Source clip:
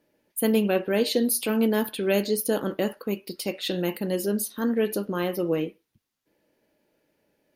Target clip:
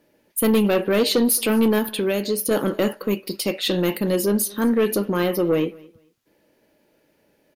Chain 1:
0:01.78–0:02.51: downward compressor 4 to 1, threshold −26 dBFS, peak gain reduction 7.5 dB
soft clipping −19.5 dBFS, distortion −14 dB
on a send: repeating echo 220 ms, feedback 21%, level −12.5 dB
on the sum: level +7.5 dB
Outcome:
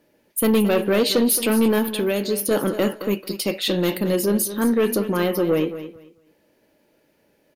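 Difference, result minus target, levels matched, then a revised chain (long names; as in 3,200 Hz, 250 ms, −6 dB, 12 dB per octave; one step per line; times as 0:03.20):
echo-to-direct +11.5 dB
0:01.78–0:02.51: downward compressor 4 to 1, threshold −26 dBFS, peak gain reduction 7.5 dB
soft clipping −19.5 dBFS, distortion −14 dB
on a send: repeating echo 220 ms, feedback 21%, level −24 dB
on the sum: level +7.5 dB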